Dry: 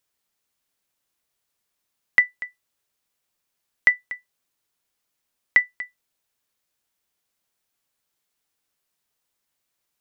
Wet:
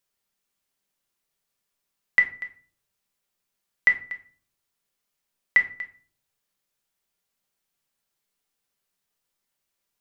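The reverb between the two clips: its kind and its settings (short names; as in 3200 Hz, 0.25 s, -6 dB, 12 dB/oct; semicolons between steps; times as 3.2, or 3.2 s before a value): shoebox room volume 390 m³, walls furnished, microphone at 1.2 m; gain -3.5 dB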